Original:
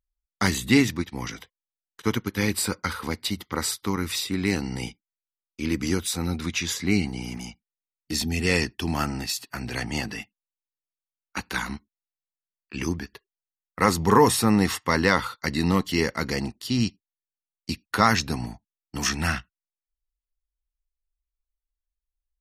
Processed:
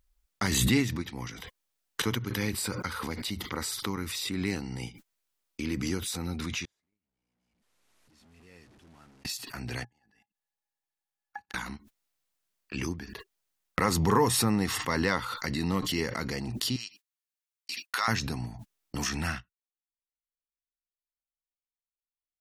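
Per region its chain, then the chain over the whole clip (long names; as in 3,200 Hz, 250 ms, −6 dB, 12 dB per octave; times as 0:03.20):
0:06.65–0:09.25: linear delta modulator 64 kbit/s, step −21.5 dBFS + noise gate −15 dBFS, range −43 dB + high-shelf EQ 3,600 Hz −8 dB
0:09.84–0:11.54: output level in coarse steps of 21 dB + gate with flip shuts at −33 dBFS, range −38 dB + hollow resonant body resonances 820/1,700 Hz, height 18 dB, ringing for 75 ms
0:16.76–0:18.08: noise gate −54 dBFS, range −11 dB + high-pass filter 1,300 Hz
whole clip: noise gate −48 dBFS, range −20 dB; dynamic equaliser 120 Hz, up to +6 dB, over −45 dBFS, Q 6; background raised ahead of every attack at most 25 dB per second; level −7.5 dB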